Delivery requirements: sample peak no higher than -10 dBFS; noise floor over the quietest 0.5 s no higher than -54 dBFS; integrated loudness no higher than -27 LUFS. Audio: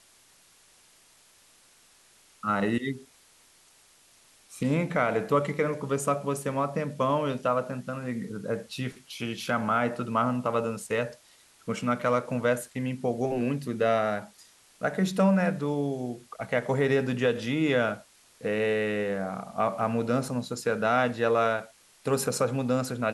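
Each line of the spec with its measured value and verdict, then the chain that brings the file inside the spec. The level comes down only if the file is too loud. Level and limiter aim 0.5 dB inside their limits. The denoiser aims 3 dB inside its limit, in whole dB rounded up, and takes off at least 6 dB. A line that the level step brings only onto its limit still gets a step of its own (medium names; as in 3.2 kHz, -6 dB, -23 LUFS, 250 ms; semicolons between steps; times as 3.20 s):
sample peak -11.5 dBFS: pass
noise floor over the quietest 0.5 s -59 dBFS: pass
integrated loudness -28.0 LUFS: pass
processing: none needed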